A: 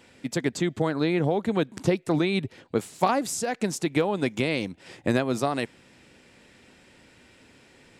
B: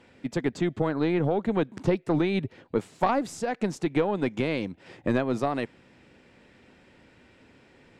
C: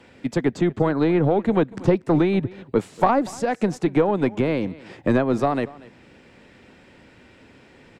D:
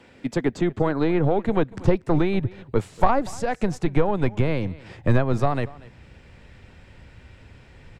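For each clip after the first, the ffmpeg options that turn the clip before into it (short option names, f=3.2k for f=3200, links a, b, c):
-af "aeval=exprs='0.473*(cos(1*acos(clip(val(0)/0.473,-1,1)))-cos(1*PI/2))+0.119*(cos(2*acos(clip(val(0)/0.473,-1,1)))-cos(2*PI/2))':c=same,aemphasis=mode=reproduction:type=75kf"
-filter_complex "[0:a]aecho=1:1:237:0.0891,acrossover=split=270|1200|1600[a][b][c][d];[d]alimiter=level_in=10dB:limit=-24dB:level=0:latency=1:release=484,volume=-10dB[e];[a][b][c][e]amix=inputs=4:normalize=0,volume=6dB"
-af "asubboost=boost=9.5:cutoff=88,volume=-1dB"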